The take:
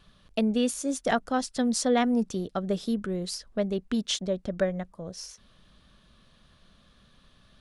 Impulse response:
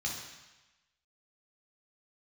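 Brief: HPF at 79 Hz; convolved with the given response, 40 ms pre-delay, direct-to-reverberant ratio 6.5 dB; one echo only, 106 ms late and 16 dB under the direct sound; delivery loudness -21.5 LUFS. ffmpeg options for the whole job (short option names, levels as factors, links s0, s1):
-filter_complex "[0:a]highpass=79,aecho=1:1:106:0.158,asplit=2[s0][s1];[1:a]atrim=start_sample=2205,adelay=40[s2];[s1][s2]afir=irnorm=-1:irlink=0,volume=0.316[s3];[s0][s3]amix=inputs=2:normalize=0,volume=2"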